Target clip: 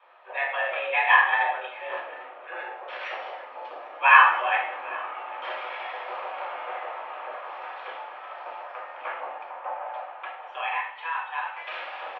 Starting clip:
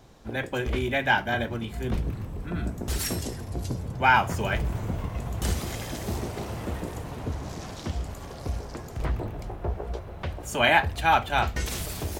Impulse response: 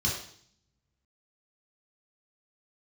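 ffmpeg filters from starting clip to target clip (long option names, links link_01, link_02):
-filter_complex "[0:a]asettb=1/sr,asplit=3[link_01][link_02][link_03];[link_01]atrim=end=3.884[link_04];[link_02]atrim=start=3.88:end=4.34,asetpts=PTS-STARTPTS,afade=type=in:duration=0.004:curve=qsin,afade=type=out:start_time=0.456:duration=0.004:curve=qsin,asplit=2[link_05][link_06];[link_06]adelay=13,volume=-4.5dB[link_07];[link_05][link_07]amix=inputs=2:normalize=0,atrim=end_sample=20286[link_08];[link_03]atrim=start=4.336[link_09];[link_04][link_08]acrossfade=duration=0.004:curve1=hsin:curve2=qsin[link_10];[link_10][link_09]acrossfade=duration=0.004:curve1=qsin:curve2=hsin,asettb=1/sr,asplit=3[link_11][link_12][link_13];[link_11]atrim=end=10.054[link_14];[link_12]atrim=start=10.05:end=11.67,asetpts=PTS-STARTPTS,afade=type=in:duration=0.004:curve=qsin,afade=type=out:start_time=1.616:duration=0.004:curve=qsin,acompressor=threshold=-34dB:ratio=4[link_15];[link_13]atrim=start=11.666[link_16];[link_14][link_15]acrossfade=duration=0.004:curve1=hsin:curve2=qsin[link_17];[link_17][link_16]acrossfade=duration=0.004:curve1=qsin:curve2=hsin,aecho=1:1:797:0.0841[link_18];[1:a]atrim=start_sample=2205[link_19];[link_18][link_19]afir=irnorm=-1:irlink=0,highpass=frequency=500:width_type=q:width=0.5412,highpass=frequency=500:width_type=q:width=1.307,lowpass=frequency=2600:width_type=q:width=0.5176,lowpass=frequency=2600:width_type=q:width=0.7071,lowpass=frequency=2600:width_type=q:width=1.932,afreqshift=170,volume=-1.5dB"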